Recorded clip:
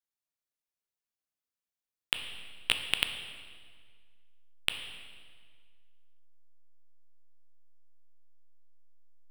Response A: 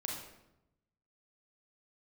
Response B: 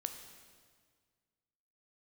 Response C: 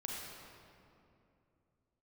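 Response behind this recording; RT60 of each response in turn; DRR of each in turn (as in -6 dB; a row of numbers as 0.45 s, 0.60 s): B; 0.90 s, 1.8 s, 2.7 s; -1.5 dB, 6.0 dB, -3.0 dB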